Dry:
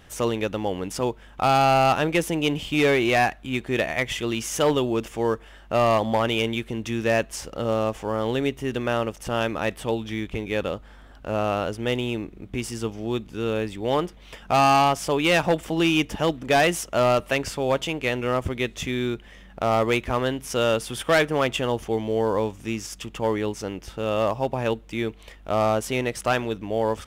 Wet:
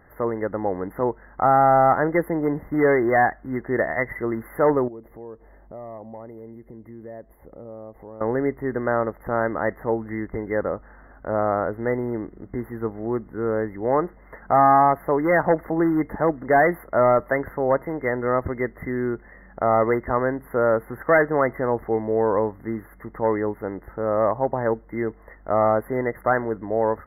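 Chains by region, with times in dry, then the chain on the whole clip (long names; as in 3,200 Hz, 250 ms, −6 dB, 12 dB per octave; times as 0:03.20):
0:04.88–0:08.21: parametric band 1,500 Hz −15 dB 1.1 octaves + downward compressor 3 to 1, threshold −42 dBFS
whole clip: automatic gain control gain up to 3 dB; bass and treble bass −5 dB, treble −11 dB; brick-wall band-stop 2,100–11,000 Hz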